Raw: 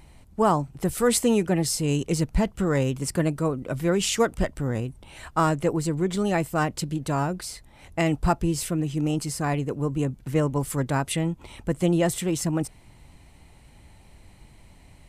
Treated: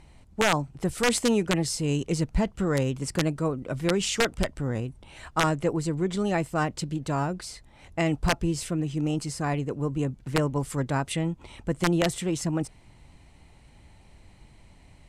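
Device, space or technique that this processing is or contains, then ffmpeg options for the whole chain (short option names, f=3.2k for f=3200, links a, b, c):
overflowing digital effects unit: -af "aeval=exprs='(mod(3.76*val(0)+1,2)-1)/3.76':c=same,lowpass=8.6k,volume=-2dB"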